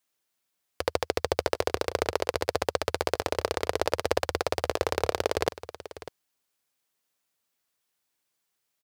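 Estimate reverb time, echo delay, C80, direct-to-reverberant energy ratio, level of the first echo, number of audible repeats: none, 0.598 s, none, none, -15.0 dB, 1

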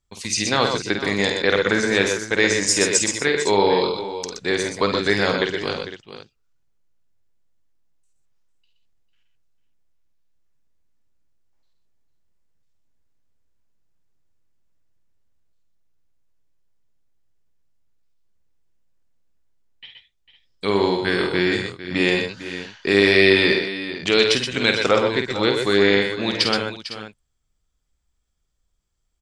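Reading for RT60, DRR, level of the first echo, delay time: none, none, -6.5 dB, 50 ms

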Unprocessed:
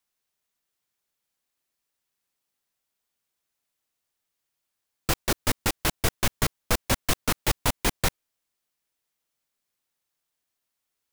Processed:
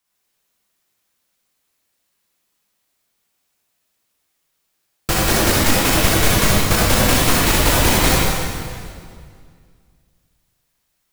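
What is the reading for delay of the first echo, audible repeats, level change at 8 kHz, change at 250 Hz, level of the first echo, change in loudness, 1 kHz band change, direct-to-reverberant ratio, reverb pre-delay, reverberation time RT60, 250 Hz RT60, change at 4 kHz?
none, none, +11.5 dB, +13.5 dB, none, +11.5 dB, +12.0 dB, -7.0 dB, 35 ms, 2.2 s, 2.3 s, +12.0 dB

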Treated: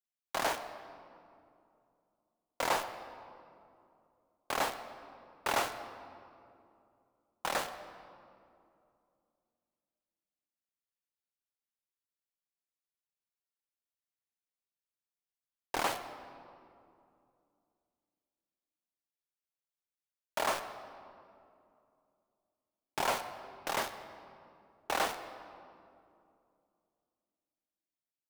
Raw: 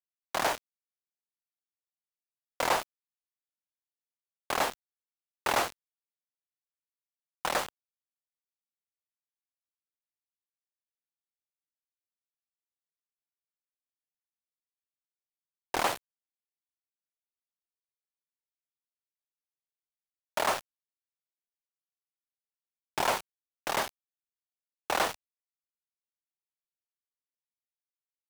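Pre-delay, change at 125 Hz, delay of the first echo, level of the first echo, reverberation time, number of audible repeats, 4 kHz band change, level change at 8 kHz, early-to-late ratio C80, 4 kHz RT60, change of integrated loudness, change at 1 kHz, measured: 4 ms, -3.5 dB, none, none, 2.6 s, none, -3.5 dB, -4.0 dB, 11.0 dB, 1.5 s, -4.5 dB, -3.5 dB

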